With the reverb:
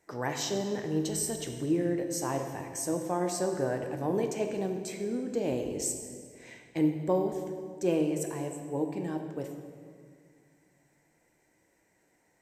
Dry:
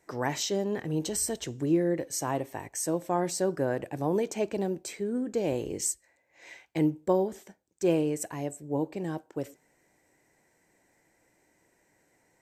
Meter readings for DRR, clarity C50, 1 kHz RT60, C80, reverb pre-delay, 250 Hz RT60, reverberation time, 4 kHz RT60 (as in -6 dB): 4.5 dB, 6.0 dB, 1.9 s, 7.5 dB, 7 ms, 2.6 s, 2.1 s, 1.5 s